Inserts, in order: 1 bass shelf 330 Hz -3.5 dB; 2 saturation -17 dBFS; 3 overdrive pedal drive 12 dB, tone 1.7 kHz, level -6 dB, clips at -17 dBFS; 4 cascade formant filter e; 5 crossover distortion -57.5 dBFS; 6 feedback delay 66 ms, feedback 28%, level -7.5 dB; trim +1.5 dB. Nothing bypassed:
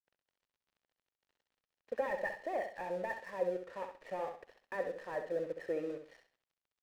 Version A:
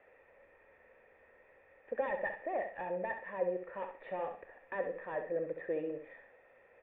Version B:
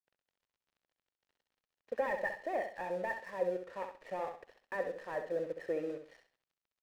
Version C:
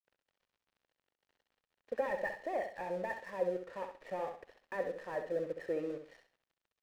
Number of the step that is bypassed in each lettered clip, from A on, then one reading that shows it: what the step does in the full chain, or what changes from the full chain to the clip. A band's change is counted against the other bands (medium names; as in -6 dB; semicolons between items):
5, distortion -20 dB; 2, distortion -13 dB; 1, 125 Hz band +2.0 dB